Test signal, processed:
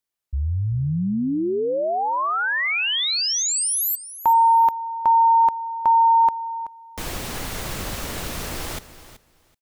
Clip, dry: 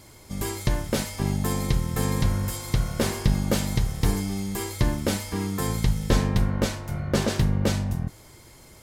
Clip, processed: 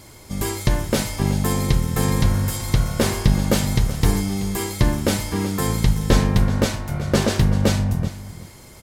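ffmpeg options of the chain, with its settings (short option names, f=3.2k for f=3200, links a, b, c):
-af "aecho=1:1:379|758:0.178|0.0302,volume=5dB"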